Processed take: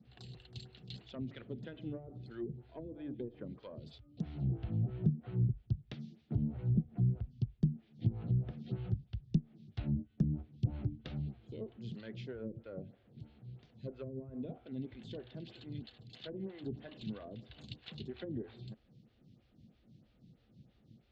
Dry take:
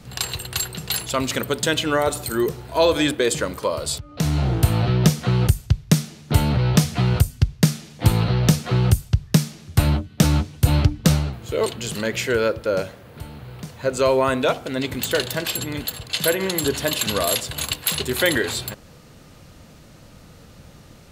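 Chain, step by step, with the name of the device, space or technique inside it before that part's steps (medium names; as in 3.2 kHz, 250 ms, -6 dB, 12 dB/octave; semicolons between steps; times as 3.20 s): vibe pedal into a guitar amplifier (lamp-driven phase shifter 3.1 Hz; valve stage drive 11 dB, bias 0.4; cabinet simulation 82–4500 Hz, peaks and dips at 83 Hz -10 dB, 120 Hz +4 dB, 220 Hz +7 dB, 350 Hz +4 dB, 750 Hz +8 dB, 3.4 kHz +4 dB); low-pass that closes with the level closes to 320 Hz, closed at -16 dBFS; amplifier tone stack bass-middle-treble 10-0-1; trim +3 dB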